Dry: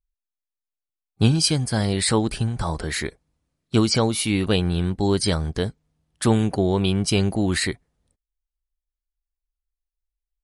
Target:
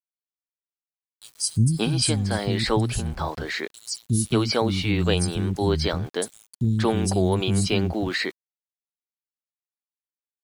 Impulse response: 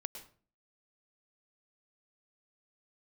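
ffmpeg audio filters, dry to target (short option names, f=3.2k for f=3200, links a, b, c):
-filter_complex "[0:a]acrossover=split=240|5500[a][b][c];[a]adelay=360[d];[b]adelay=580[e];[d][e][c]amix=inputs=3:normalize=0,aeval=exprs='val(0)*gte(abs(val(0)),0.00631)':c=same"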